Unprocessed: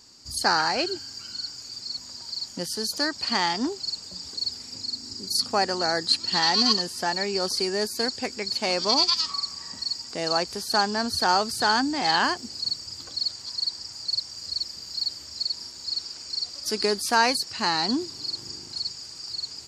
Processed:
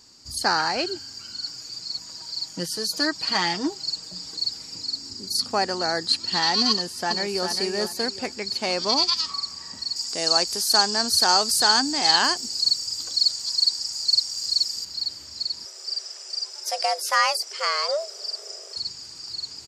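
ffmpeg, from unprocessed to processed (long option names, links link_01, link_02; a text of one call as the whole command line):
ffmpeg -i in.wav -filter_complex "[0:a]asettb=1/sr,asplit=3[link_01][link_02][link_03];[link_01]atrim=end=1.424[link_04];[link_02]atrim=start=1.42:end=5.1,asetpts=PTS-STARTPTS,afade=type=in:duration=0.004:curve=qsin,afade=type=out:start_time=3.676:duration=0.004:curve=qsin,aecho=1:1:6.3:0.65,atrim=end_sample=162288[link_05];[link_03]atrim=start=5.096[link_06];[link_04][link_05]acrossfade=duration=0.004:curve1=hsin:curve2=qsin[link_07];[link_07][link_06]acrossfade=duration=0.004:curve1=qsin:curve2=hsin,asplit=2[link_08][link_09];[link_09]afade=type=in:start_time=6.7:duration=0.01,afade=type=out:start_time=7.48:duration=0.01,aecho=0:1:400|800|1200|1600:0.473151|0.141945|0.0425836|0.0127751[link_10];[link_08][link_10]amix=inputs=2:normalize=0,asettb=1/sr,asplit=3[link_11][link_12][link_13];[link_11]atrim=end=9.964[link_14];[link_12]atrim=start=9.96:end=14.85,asetpts=PTS-STARTPTS,afade=type=in:duration=0.004:curve=qsin,afade=type=out:start_time=4.886:duration=0.004:curve=qsin,bass=frequency=250:gain=-5,treble=frequency=4000:gain=12[link_15];[link_13]atrim=start=14.846[link_16];[link_14][link_15]acrossfade=duration=0.004:curve1=hsin:curve2=qsin[link_17];[link_17][link_16]acrossfade=duration=0.004:curve1=qsin:curve2=hsin,asettb=1/sr,asplit=3[link_18][link_19][link_20];[link_18]atrim=end=15.654[link_21];[link_19]atrim=start=15.65:end=18.76,asetpts=PTS-STARTPTS,afade=type=in:duration=0.004:curve=qsin,afade=type=out:start_time=3.106:duration=0.004:curve=qsin,afreqshift=300[link_22];[link_20]atrim=start=18.756[link_23];[link_21][link_22]acrossfade=duration=0.004:curve1=hsin:curve2=qsin[link_24];[link_24][link_23]acrossfade=duration=0.004:curve1=qsin:curve2=hsin" out.wav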